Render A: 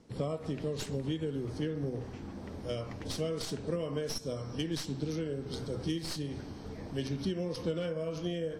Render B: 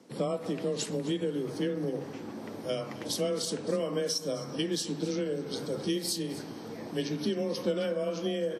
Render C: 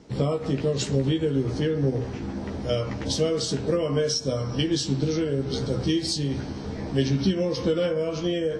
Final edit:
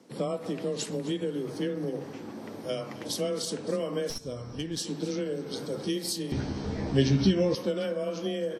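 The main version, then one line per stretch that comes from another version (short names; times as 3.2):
B
4.1–4.77 from A
6.32–7.55 from C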